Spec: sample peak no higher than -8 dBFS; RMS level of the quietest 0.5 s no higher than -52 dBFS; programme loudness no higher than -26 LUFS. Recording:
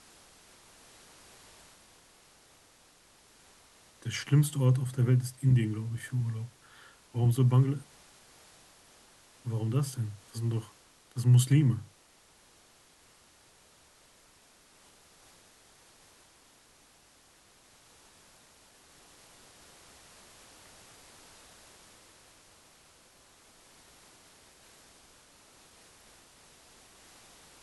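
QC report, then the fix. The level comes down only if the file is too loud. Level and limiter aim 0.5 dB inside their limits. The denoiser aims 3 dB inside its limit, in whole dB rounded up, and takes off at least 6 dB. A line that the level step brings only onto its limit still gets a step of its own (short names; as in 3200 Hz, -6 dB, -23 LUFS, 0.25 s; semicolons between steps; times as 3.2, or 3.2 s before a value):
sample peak -13.5 dBFS: OK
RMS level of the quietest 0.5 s -62 dBFS: OK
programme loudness -29.0 LUFS: OK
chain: none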